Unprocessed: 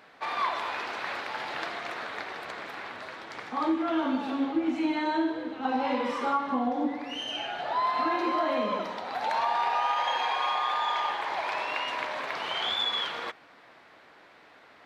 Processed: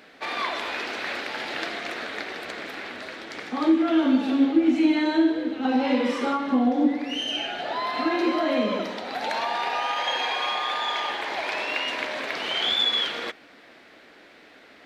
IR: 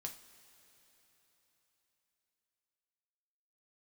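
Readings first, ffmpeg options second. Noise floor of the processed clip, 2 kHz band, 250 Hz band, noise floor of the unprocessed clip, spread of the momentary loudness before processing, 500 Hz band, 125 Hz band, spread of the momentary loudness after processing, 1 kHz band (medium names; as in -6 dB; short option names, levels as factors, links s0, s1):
-51 dBFS, +4.5 dB, +8.5 dB, -55 dBFS, 9 LU, +5.0 dB, no reading, 12 LU, -1.0 dB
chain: -af "equalizer=f=125:t=o:w=1:g=-8,equalizer=f=250:t=o:w=1:g=4,equalizer=f=1000:t=o:w=1:g=-10,volume=2.24"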